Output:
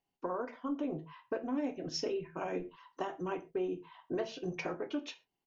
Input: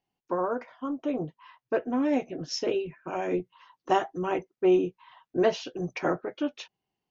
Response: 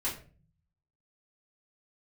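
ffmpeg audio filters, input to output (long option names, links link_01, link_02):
-filter_complex "[0:a]acompressor=threshold=-30dB:ratio=6,atempo=1.3,asplit=2[link_01][link_02];[1:a]atrim=start_sample=2205,atrim=end_sample=6174[link_03];[link_02][link_03]afir=irnorm=-1:irlink=0,volume=-10.5dB[link_04];[link_01][link_04]amix=inputs=2:normalize=0,volume=-4.5dB"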